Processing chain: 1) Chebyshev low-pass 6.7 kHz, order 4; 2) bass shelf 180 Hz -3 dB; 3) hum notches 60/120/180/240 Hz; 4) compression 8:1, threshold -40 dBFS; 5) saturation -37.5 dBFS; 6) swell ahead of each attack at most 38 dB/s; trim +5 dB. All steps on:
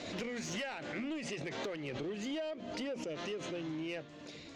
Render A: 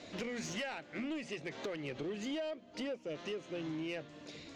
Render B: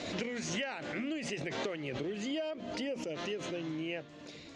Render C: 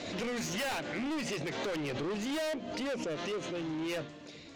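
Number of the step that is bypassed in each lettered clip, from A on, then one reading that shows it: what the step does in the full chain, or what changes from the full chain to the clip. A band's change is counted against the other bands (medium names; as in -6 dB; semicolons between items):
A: 6, crest factor change -2.5 dB; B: 5, distortion -16 dB; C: 4, mean gain reduction 9.0 dB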